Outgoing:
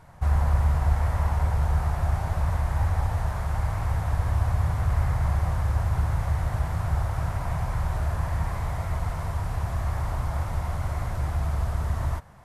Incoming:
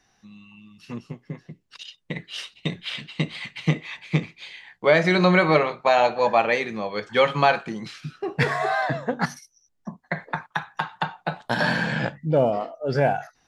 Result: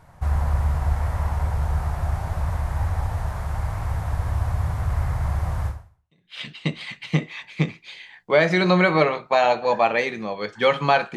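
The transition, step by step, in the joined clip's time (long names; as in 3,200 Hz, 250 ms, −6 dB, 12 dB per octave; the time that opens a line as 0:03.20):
outgoing
0:06.04: continue with incoming from 0:02.58, crossfade 0.74 s exponential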